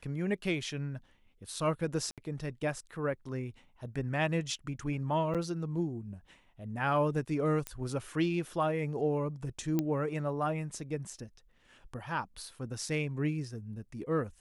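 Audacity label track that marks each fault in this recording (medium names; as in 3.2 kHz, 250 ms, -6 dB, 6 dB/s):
2.110000	2.180000	dropout 67 ms
5.340000	5.350000	dropout 7 ms
7.670000	7.670000	pop -19 dBFS
9.790000	9.790000	pop -17 dBFS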